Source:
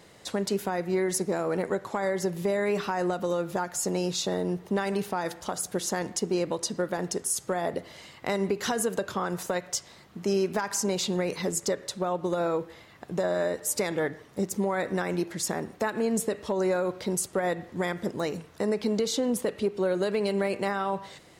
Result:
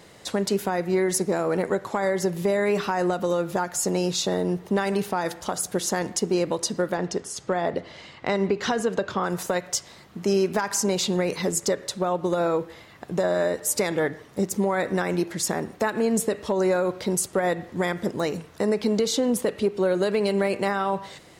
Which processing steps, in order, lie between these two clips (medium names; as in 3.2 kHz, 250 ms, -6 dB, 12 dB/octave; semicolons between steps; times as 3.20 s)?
6.94–9.24 s: low-pass 5 kHz 12 dB/octave; trim +4 dB